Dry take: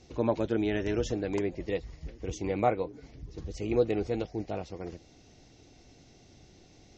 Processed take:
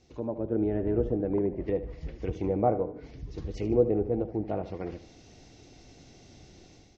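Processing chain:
treble cut that deepens with the level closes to 710 Hz, closed at −28.5 dBFS
automatic gain control gain up to 10 dB
on a send: repeating echo 75 ms, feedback 43%, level −13 dB
on the sum: level −6.5 dB

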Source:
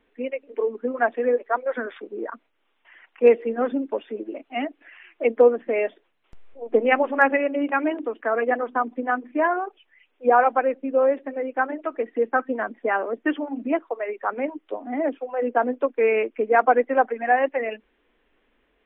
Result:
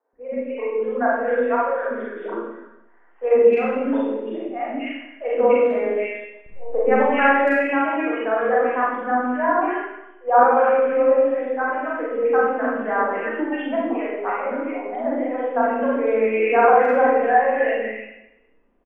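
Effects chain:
three-band delay without the direct sound mids, lows, highs 130/260 ms, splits 480/1,800 Hz
low-pass that shuts in the quiet parts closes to 920 Hz, open at −20.5 dBFS
four-comb reverb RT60 0.88 s, combs from 32 ms, DRR −5.5 dB
level −1.5 dB

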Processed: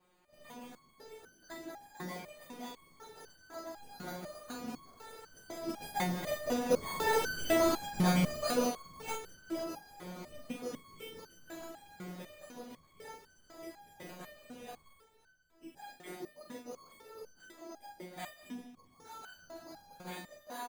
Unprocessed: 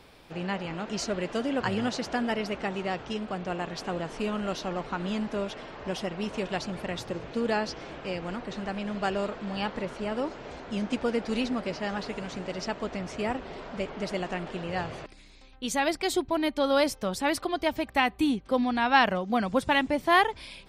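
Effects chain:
feedback delay that plays each chunk backwards 307 ms, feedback 54%, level −12.5 dB
source passing by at 0:07.18, 31 m/s, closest 10 metres
random phases in short frames
low-shelf EQ 100 Hz −6 dB
convolution reverb RT60 2.0 s, pre-delay 114 ms, DRR 13.5 dB
bad sample-rate conversion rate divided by 8×, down filtered, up hold
in parallel at +0.5 dB: output level in coarse steps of 22 dB
on the sum: ambience of single reflections 12 ms −5 dB, 44 ms −3.5 dB
boost into a limiter +19 dB
step-sequenced resonator 4 Hz 180–1,500 Hz

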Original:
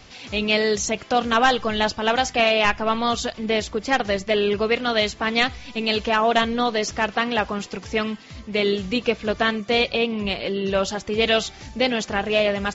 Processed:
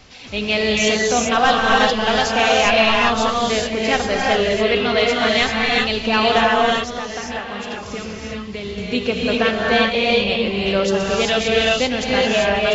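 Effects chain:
0:06.45–0:08.78: downward compressor, threshold −28 dBFS, peak gain reduction 11.5 dB
reverb whose tail is shaped and stops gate 420 ms rising, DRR −3.5 dB

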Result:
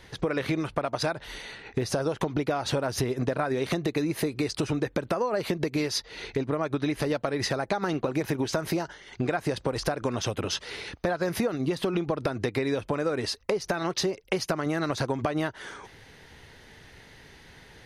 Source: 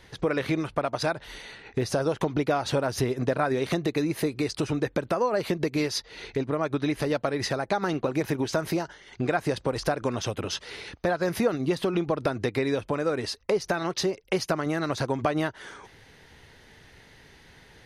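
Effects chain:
downward compressor, threshold −25 dBFS, peak gain reduction 7.5 dB
level +2 dB

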